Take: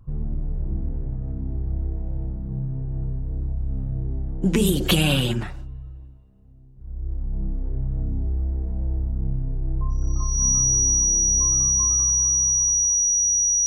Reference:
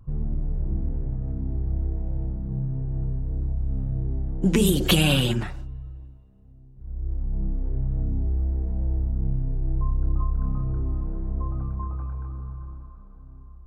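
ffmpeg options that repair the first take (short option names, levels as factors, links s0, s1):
-af "bandreject=f=5800:w=30"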